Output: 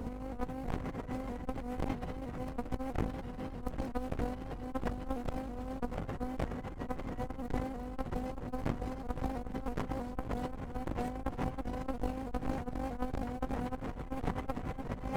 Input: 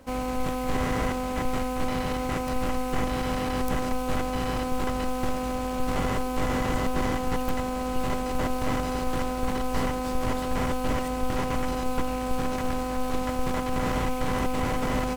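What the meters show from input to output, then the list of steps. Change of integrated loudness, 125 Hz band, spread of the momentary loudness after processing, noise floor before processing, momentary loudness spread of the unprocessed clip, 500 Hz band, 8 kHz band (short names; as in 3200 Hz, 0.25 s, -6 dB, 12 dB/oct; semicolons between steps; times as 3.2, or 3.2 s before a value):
-10.5 dB, -8.0 dB, 3 LU, -30 dBFS, 2 LU, -11.5 dB, -20.5 dB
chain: high shelf 2100 Hz -10 dB; reverb removal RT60 0.63 s; low shelf 320 Hz +9.5 dB; notches 60/120/180 Hz; on a send: thinning echo 0.172 s, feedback 75%, high-pass 360 Hz, level -10 dB; on the sum: tube stage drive 21 dB, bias 0.4; limiter -27 dBFS, peak gain reduction 10 dB; negative-ratio compressor -38 dBFS, ratio -0.5; shaped vibrato saw up 3.1 Hz, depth 100 cents; gain +2 dB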